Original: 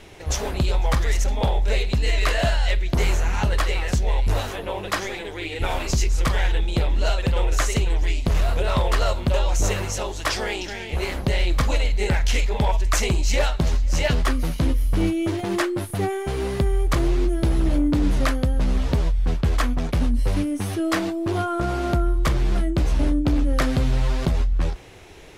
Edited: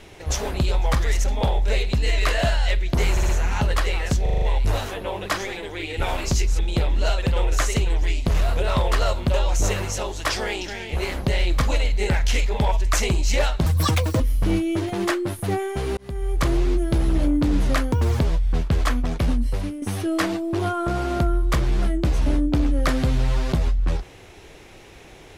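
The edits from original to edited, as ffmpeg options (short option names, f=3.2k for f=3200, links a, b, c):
-filter_complex "[0:a]asplit=16[a][b][c][d][e][f][g][h][i][j][k][l][m][n][o][p];[a]atrim=end=3.172[q];[b]atrim=start=3.108:end=3.172[r];[c]atrim=start=3.108:end=3.172[s];[d]atrim=start=3.108:end=4.082[t];[e]atrim=start=4.038:end=4.082[u];[f]atrim=start=4.038:end=4.082[v];[g]atrim=start=4.038:end=4.082[w];[h]atrim=start=4.038:end=4.082[x];[i]atrim=start=4.038:end=6.212[y];[j]atrim=start=6.588:end=13.664[z];[k]atrim=start=13.66:end=14.71,asetpts=PTS-STARTPTS,asetrate=85554,aresample=44100[aa];[l]atrim=start=14.706:end=16.48,asetpts=PTS-STARTPTS,afade=t=out:st=1.77:d=0.004:c=hsin[ab];[m]atrim=start=16.48:end=18.434,asetpts=PTS-STARTPTS,afade=t=in:d=0.46[ac];[n]atrim=start=18.43:end=18.93,asetpts=PTS-STARTPTS,asetrate=79380,aresample=44100[ad];[o]atrim=start=18.926:end=20.55,asetpts=PTS-STARTPTS,afade=t=out:st=1.114:d=0.51:silence=0.334965[ae];[p]atrim=start=20.55,asetpts=PTS-STARTPTS,afade=t=in:d=0.004:c=hsin:silence=0.334965[af];[q][r]acrossfade=d=0.004:c1=hsin:c2=hsin[ag];[ag][s]acrossfade=d=0.004:c1=hsin:c2=hsin[ah];[ah][t]acrossfade=d=0.004:c1=hsin:c2=hsin[ai];[ai][u]acrossfade=d=0.004:c1=hsin:c2=hsin[aj];[aj][v]acrossfade=d=0.004:c1=hsin:c2=hsin[ak];[ak][w]acrossfade=d=0.004:c1=hsin:c2=hsin[al];[al][x]acrossfade=d=0.004:c1=hsin:c2=hsin[am];[am][y]acrossfade=d=0.004:c1=hsin:c2=hsin[an];[an][z]acrossfade=d=0.004:c1=hsin:c2=hsin[ao];[ao][aa]acrossfade=d=0.004:c1=hsin:c2=hsin[ap];[ab][ac]concat=n=2:v=0:a=1[aq];[ap][aq]acrossfade=d=0.004:c1=hsin:c2=hsin[ar];[ar][ad]acrossfade=d=0.004:c1=hsin:c2=hsin[as];[ae][af]concat=n=2:v=0:a=1[at];[as][at]acrossfade=d=0.004:c1=hsin:c2=hsin"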